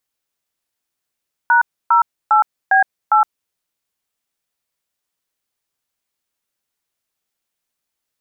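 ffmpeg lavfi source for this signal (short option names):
-f lavfi -i "aevalsrc='0.266*clip(min(mod(t,0.404),0.115-mod(t,0.404))/0.002,0,1)*(eq(floor(t/0.404),0)*(sin(2*PI*941*mod(t,0.404))+sin(2*PI*1477*mod(t,0.404)))+eq(floor(t/0.404),1)*(sin(2*PI*941*mod(t,0.404))+sin(2*PI*1336*mod(t,0.404)))+eq(floor(t/0.404),2)*(sin(2*PI*852*mod(t,0.404))+sin(2*PI*1336*mod(t,0.404)))+eq(floor(t/0.404),3)*(sin(2*PI*770*mod(t,0.404))+sin(2*PI*1633*mod(t,0.404)))+eq(floor(t/0.404),4)*(sin(2*PI*852*mod(t,0.404))+sin(2*PI*1336*mod(t,0.404))))':d=2.02:s=44100"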